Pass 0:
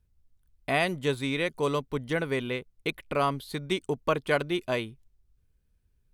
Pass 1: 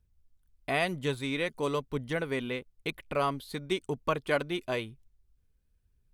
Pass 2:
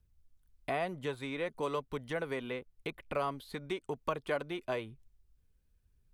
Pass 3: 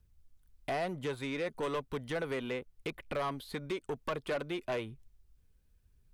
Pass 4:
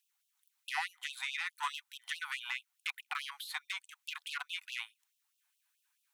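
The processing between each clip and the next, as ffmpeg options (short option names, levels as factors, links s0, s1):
-af "aphaser=in_gain=1:out_gain=1:delay=4.7:decay=0.24:speed=1:type=triangular,volume=0.708"
-filter_complex "[0:a]acrossover=split=470|1300|2900[s0][s1][s2][s3];[s0]acompressor=threshold=0.00794:ratio=4[s4];[s1]acompressor=threshold=0.0251:ratio=4[s5];[s2]acompressor=threshold=0.00501:ratio=4[s6];[s3]acompressor=threshold=0.00178:ratio=4[s7];[s4][s5][s6][s7]amix=inputs=4:normalize=0"
-af "asoftclip=type=tanh:threshold=0.0251,volume=1.5"
-af "equalizer=f=4800:w=6.2:g=-4,afftfilt=real='re*gte(b*sr/1024,710*pow(2600/710,0.5+0.5*sin(2*PI*4.7*pts/sr)))':imag='im*gte(b*sr/1024,710*pow(2600/710,0.5+0.5*sin(2*PI*4.7*pts/sr)))':win_size=1024:overlap=0.75,volume=2"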